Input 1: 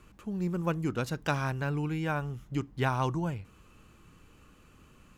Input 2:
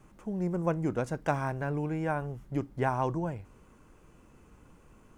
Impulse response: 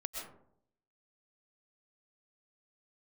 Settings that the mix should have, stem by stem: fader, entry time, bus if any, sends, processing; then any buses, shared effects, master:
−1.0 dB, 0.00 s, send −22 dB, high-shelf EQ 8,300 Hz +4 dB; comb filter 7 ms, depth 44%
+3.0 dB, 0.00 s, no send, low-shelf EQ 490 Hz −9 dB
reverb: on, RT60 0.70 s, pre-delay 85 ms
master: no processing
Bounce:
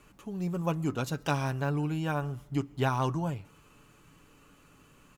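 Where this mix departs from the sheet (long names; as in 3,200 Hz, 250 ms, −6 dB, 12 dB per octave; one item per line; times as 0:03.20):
stem 2 +3.0 dB → −4.0 dB
master: extra low-shelf EQ 110 Hz −6.5 dB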